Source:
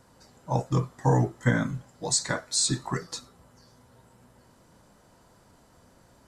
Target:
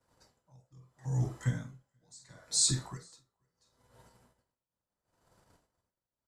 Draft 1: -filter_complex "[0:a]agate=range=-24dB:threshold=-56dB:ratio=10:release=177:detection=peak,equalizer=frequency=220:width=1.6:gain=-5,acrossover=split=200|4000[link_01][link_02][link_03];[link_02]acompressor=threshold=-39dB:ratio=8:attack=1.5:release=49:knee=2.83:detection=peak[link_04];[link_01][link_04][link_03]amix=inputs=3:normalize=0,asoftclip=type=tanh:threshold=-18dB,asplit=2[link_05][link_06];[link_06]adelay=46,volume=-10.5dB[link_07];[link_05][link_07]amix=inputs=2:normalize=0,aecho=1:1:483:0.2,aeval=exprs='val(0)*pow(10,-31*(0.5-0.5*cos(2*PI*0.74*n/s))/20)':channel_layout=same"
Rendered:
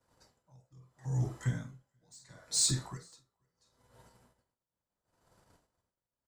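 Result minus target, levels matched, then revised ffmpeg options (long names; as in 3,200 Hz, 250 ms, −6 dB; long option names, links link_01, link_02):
soft clipping: distortion +21 dB
-filter_complex "[0:a]agate=range=-24dB:threshold=-56dB:ratio=10:release=177:detection=peak,equalizer=frequency=220:width=1.6:gain=-5,acrossover=split=200|4000[link_01][link_02][link_03];[link_02]acompressor=threshold=-39dB:ratio=8:attack=1.5:release=49:knee=2.83:detection=peak[link_04];[link_01][link_04][link_03]amix=inputs=3:normalize=0,asoftclip=type=tanh:threshold=-6dB,asplit=2[link_05][link_06];[link_06]adelay=46,volume=-10.5dB[link_07];[link_05][link_07]amix=inputs=2:normalize=0,aecho=1:1:483:0.2,aeval=exprs='val(0)*pow(10,-31*(0.5-0.5*cos(2*PI*0.74*n/s))/20)':channel_layout=same"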